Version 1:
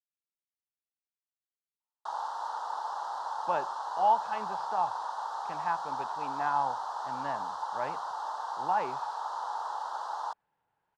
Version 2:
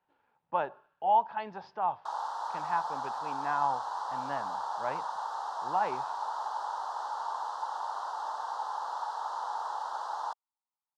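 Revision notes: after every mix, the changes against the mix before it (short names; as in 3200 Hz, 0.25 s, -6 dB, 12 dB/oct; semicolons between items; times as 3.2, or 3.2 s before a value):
speech: entry -2.95 s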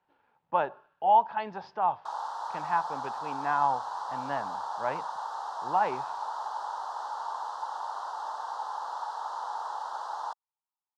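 speech +3.5 dB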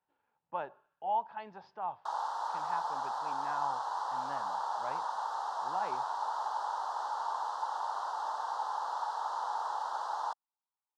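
speech -10.5 dB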